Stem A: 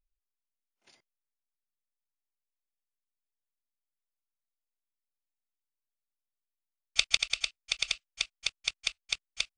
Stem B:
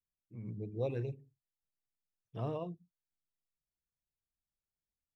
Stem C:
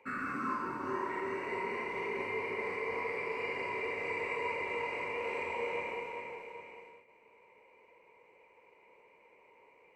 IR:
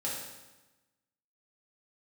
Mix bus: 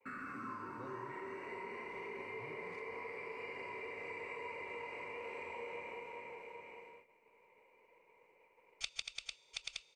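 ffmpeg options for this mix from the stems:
-filter_complex "[0:a]adelay=1850,volume=-3.5dB,asplit=2[a][b];[b]volume=-21.5dB[c];[1:a]volume=-11.5dB[d];[2:a]agate=range=-33dB:threshold=-57dB:ratio=3:detection=peak,volume=-1.5dB[e];[3:a]atrim=start_sample=2205[f];[c][f]afir=irnorm=-1:irlink=0[g];[a][d][e][g]amix=inputs=4:normalize=0,acompressor=threshold=-49dB:ratio=2"

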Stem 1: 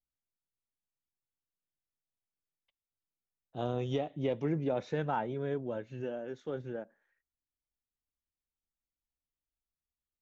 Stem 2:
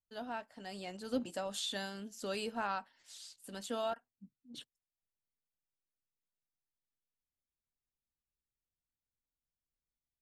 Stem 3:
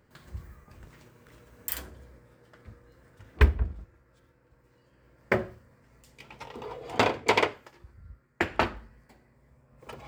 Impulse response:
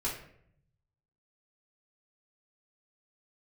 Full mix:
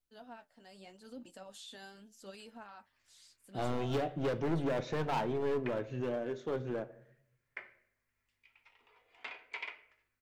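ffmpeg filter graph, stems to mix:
-filter_complex "[0:a]volume=34dB,asoftclip=hard,volume=-34dB,volume=2.5dB,asplit=2[a][b];[b]volume=-13.5dB[c];[1:a]alimiter=level_in=8dB:limit=-24dB:level=0:latency=1:release=20,volume=-8dB,flanger=delay=3.3:depth=9.6:regen=44:speed=0.81:shape=sinusoidal,volume=-5.5dB[d];[2:a]bandpass=f=2.3k:t=q:w=2:csg=0,aeval=exprs='val(0)+0.000178*(sin(2*PI*50*n/s)+sin(2*PI*2*50*n/s)/2+sin(2*PI*3*50*n/s)/3+sin(2*PI*4*50*n/s)/4+sin(2*PI*5*50*n/s)/5)':c=same,adelay=2250,volume=-16dB,asplit=2[e][f];[f]volume=-9dB[g];[3:a]atrim=start_sample=2205[h];[c][g]amix=inputs=2:normalize=0[i];[i][h]afir=irnorm=-1:irlink=0[j];[a][d][e][j]amix=inputs=4:normalize=0"

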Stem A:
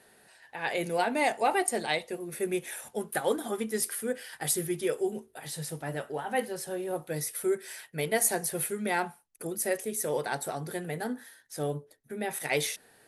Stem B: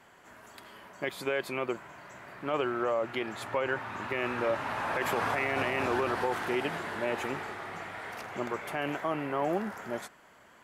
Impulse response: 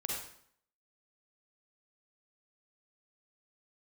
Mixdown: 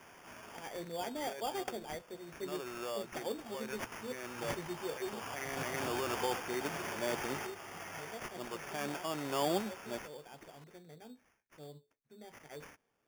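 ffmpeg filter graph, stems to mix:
-filter_complex "[0:a]equalizer=f=2.1k:t=o:w=1.6:g=-8,volume=-10.5dB,afade=t=out:st=5.59:d=0.55:silence=0.398107,asplit=2[a][b];[1:a]volume=1dB[c];[b]apad=whole_len=469188[d];[c][d]sidechaincompress=threshold=-52dB:ratio=10:attack=31:release=1190[e];[a][e]amix=inputs=2:normalize=0,acrusher=samples=11:mix=1:aa=0.000001"

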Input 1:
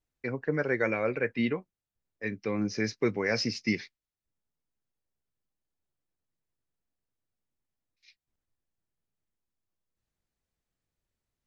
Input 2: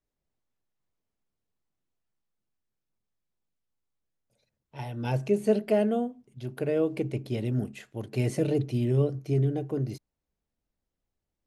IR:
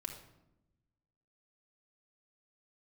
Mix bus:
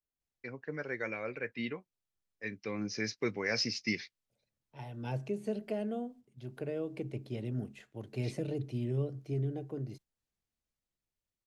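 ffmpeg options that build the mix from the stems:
-filter_complex "[0:a]highshelf=f=2.4k:g=10,adelay=200,volume=-2.5dB[a];[1:a]acrossover=split=190|3000[b][c][d];[c]acompressor=threshold=-26dB:ratio=3[e];[b][e][d]amix=inputs=3:normalize=0,volume=-13dB,asplit=2[f][g];[g]apad=whole_len=514310[h];[a][h]sidechaingate=range=-9dB:threshold=-57dB:ratio=16:detection=peak[i];[i][f]amix=inputs=2:normalize=0,highshelf=f=9.8k:g=-11,dynaudnorm=f=630:g=7:m=5dB"

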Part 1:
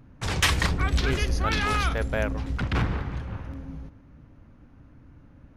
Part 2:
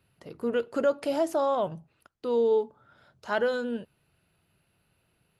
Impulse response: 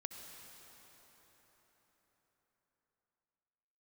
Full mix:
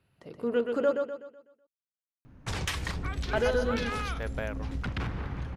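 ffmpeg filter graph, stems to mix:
-filter_complex "[0:a]acompressor=threshold=-27dB:ratio=10,adelay=2250,volume=-2dB[a];[1:a]highshelf=f=5.4k:g=-8,volume=-1.5dB,asplit=3[b][c][d];[b]atrim=end=0.92,asetpts=PTS-STARTPTS,afade=t=out:st=0.916:d=0.004:c=hsin[e];[c]atrim=start=0.92:end=3.33,asetpts=PTS-STARTPTS,volume=0[f];[d]atrim=start=3.33,asetpts=PTS-STARTPTS,afade=t=in:d=0.004:c=hsin[g];[e][f][g]concat=n=3:v=0:a=1,asplit=2[h][i];[i]volume=-5dB,aecho=0:1:125|250|375|500|625|750:1|0.41|0.168|0.0689|0.0283|0.0116[j];[a][h][j]amix=inputs=3:normalize=0"

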